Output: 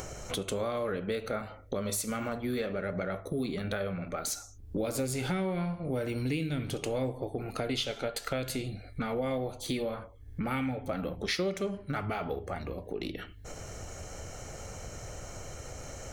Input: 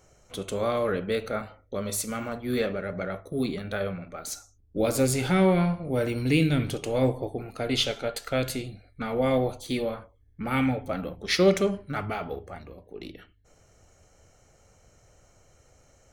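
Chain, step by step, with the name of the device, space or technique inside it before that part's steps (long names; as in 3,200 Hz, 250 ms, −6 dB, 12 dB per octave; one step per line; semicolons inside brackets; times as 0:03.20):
upward and downward compression (upward compression, threshold −27 dBFS; downward compressor 6 to 1, threshold −29 dBFS, peak gain reduction 13.5 dB)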